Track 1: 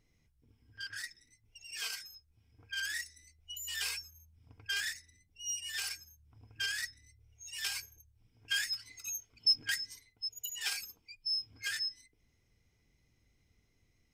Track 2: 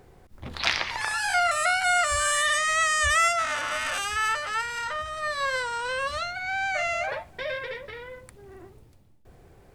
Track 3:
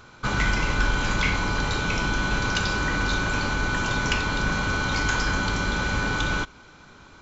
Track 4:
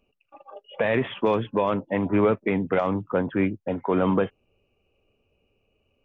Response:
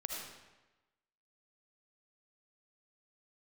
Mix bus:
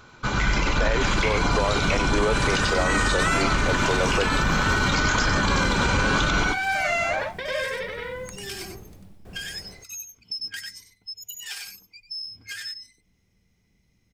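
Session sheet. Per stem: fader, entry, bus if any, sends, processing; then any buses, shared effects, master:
-8.0 dB, 0.85 s, bus A, no send, echo send -10.5 dB, dry
2.21 s -17 dB -> 2.86 s -4.5 dB, 0.00 s, bus A, no send, echo send -4.5 dB, dry
-2.0 dB, 0.00 s, no bus, send -15 dB, echo send -4.5 dB, reverb removal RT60 0.7 s
-4.0 dB, 0.00 s, no bus, no send, no echo send, HPF 360 Hz 24 dB/oct
bus A: 0.0 dB, bell 190 Hz +12.5 dB 0.29 oct; compressor 3:1, threshold -45 dBFS, peak gain reduction 16.5 dB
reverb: on, RT60 1.1 s, pre-delay 35 ms
echo: echo 95 ms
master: AGC gain up to 12 dB; limiter -12.5 dBFS, peak gain reduction 10.5 dB

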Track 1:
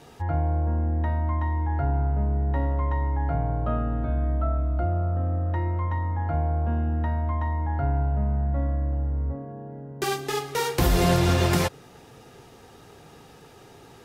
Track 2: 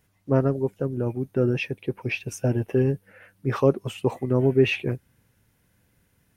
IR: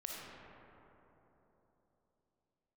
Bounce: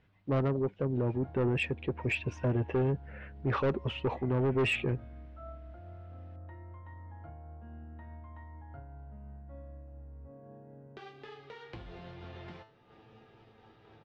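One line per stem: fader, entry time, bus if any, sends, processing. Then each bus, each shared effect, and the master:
+0.5 dB, 0.95 s, no send, compressor 4:1, threshold -35 dBFS, peak gain reduction 15.5 dB; resonator 110 Hz, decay 0.32 s, harmonics all, mix 80%; noise-modulated level, depth 50%
0.0 dB, 0.00 s, no send, dry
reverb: off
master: LPF 3700 Hz 24 dB/oct; soft clip -21 dBFS, distortion -8 dB; limiter -24 dBFS, peak gain reduction 3 dB

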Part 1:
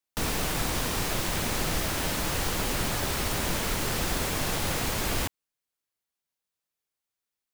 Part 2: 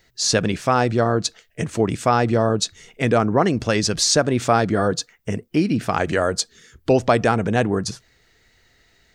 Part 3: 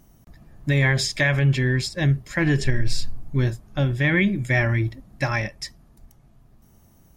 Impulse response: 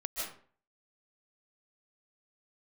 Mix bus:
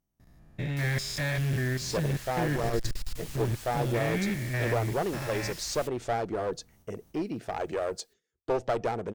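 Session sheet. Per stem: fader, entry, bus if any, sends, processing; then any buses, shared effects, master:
-12.5 dB, 0.60 s, no send, passive tone stack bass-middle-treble 10-0-10; upward compressor, threshold -39 dBFS
-16.5 dB, 1.60 s, no send, band shelf 550 Hz +9 dB
-5.5 dB, 0.00 s, no send, stepped spectrum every 0.2 s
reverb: off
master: gate with hold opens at -50 dBFS; one-sided clip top -28.5 dBFS

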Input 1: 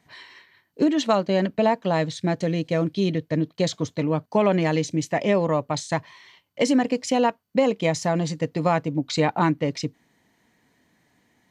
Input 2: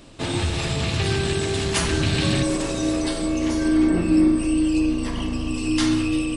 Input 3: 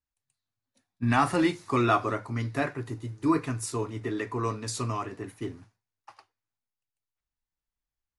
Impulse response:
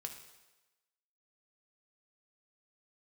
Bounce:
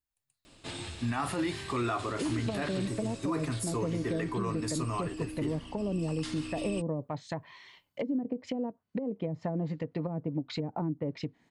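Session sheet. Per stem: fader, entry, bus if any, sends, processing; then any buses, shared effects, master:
-3.5 dB, 1.40 s, no send, treble ducked by the level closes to 350 Hz, closed at -17 dBFS; compressor 3:1, threshold -26 dBFS, peak gain reduction 8 dB
-9.5 dB, 0.45 s, no send, tilt shelf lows -3.5 dB, about 1300 Hz; auto duck -9 dB, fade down 0.45 s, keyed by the third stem
-1.5 dB, 0.00 s, no send, high shelf 10000 Hz +5.5 dB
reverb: off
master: notch 5900 Hz, Q 14; limiter -23 dBFS, peak gain reduction 10 dB

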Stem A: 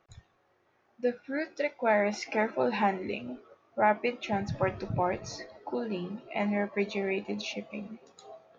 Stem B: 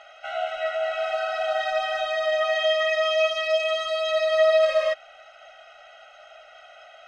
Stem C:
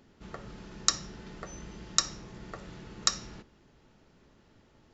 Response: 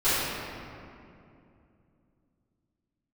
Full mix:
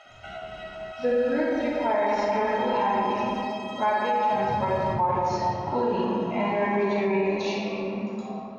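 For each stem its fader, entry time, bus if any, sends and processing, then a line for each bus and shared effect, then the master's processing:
-14.5 dB, 0.00 s, send -8 dB, no echo send, bell 960 Hz +14 dB 0.38 oct; harmonic-percussive split harmonic +8 dB; AGC gain up to 8.5 dB
-3.5 dB, 0.00 s, no send, echo send -7 dB, high shelf 6300 Hz +6.5 dB; compressor 2.5:1, threshold -37 dBFS, peak gain reduction 14.5 dB
-6.5 dB, 0.05 s, no send, no echo send, steep low-pass 5100 Hz; negative-ratio compressor -44 dBFS, ratio -0.5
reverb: on, RT60 2.6 s, pre-delay 3 ms
echo: echo 73 ms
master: limiter -16 dBFS, peak gain reduction 8 dB

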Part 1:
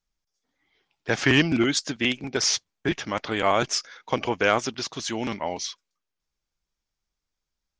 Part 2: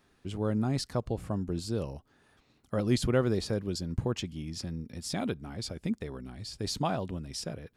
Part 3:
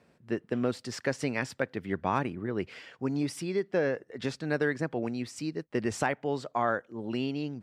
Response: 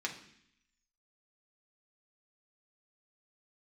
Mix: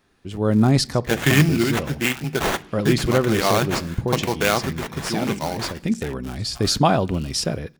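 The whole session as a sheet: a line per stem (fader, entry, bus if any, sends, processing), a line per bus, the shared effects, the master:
-11.5 dB, 0.00 s, send -11.5 dB, bell 150 Hz +15 dB 0.36 oct; sample-rate reducer 5100 Hz, jitter 20%
+2.0 dB, 0.00 s, send -18 dB, auto duck -8 dB, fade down 0.20 s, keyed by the first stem
-11.5 dB, 0.00 s, no send, cycle switcher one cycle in 3, muted; passive tone stack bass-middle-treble 10-0-10; cascading phaser falling 0.26 Hz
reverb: on, RT60 0.65 s, pre-delay 3 ms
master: AGC gain up to 12 dB

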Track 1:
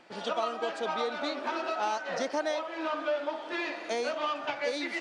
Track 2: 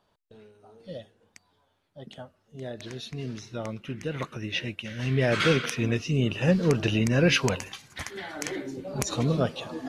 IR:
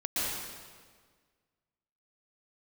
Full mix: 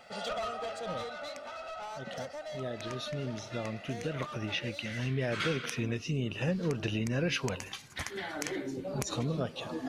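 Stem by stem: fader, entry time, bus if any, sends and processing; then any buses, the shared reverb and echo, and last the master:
0.0 dB, 0.00 s, no send, high shelf 8500 Hz +9.5 dB; comb 1.5 ms, depth 95%; soft clip -27.5 dBFS, distortion -10 dB; auto duck -10 dB, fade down 1.50 s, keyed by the second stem
-0.5 dB, 0.00 s, no send, dry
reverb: off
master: compressor 2.5:1, threshold -32 dBFS, peak gain reduction 10.5 dB

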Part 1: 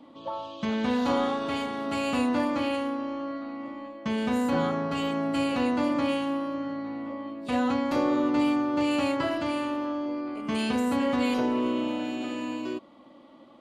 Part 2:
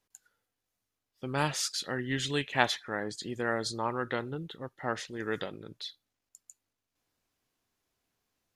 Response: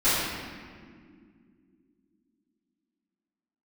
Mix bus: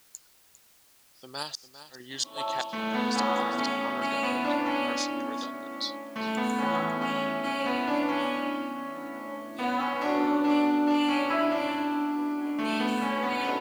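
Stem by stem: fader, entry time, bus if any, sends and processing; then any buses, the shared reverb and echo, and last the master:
0.0 dB, 2.10 s, send -11.5 dB, no echo send, dry
+2.0 dB, 0.00 s, no send, echo send -14 dB, resonant high shelf 3300 Hz +13 dB, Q 3; flipped gate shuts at -10 dBFS, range -31 dB; random-step tremolo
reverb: on, pre-delay 3 ms
echo: echo 0.401 s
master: HPF 1000 Hz 6 dB/oct; high shelf 3300 Hz -9 dB; requantised 10-bit, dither triangular

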